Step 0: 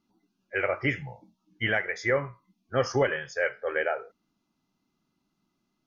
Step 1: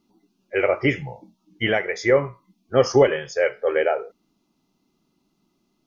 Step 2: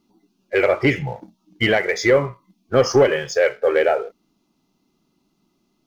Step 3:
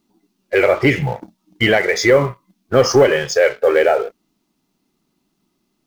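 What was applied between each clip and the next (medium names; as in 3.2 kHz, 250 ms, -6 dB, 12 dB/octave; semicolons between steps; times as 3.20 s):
fifteen-band graphic EQ 100 Hz -5 dB, 400 Hz +4 dB, 1.6 kHz -8 dB; trim +7.5 dB
in parallel at +2 dB: compression, threshold -25 dBFS, peak gain reduction 14 dB; on the sum: waveshaping leveller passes 1; trim -3 dB
companding laws mixed up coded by A; in parallel at +2.5 dB: peak limiter -17 dBFS, peak gain reduction 11 dB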